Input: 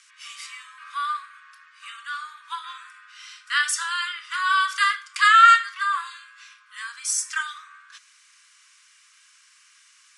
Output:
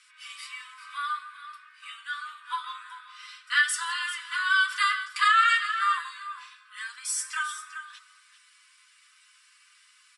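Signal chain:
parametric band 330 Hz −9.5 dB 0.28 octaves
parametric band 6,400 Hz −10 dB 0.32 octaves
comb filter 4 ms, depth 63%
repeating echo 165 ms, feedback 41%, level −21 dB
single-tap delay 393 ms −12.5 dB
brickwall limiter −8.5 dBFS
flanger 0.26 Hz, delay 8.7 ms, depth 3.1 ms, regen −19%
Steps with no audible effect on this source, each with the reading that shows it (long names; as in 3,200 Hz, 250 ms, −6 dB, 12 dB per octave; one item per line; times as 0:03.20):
parametric band 330 Hz: nothing at its input below 960 Hz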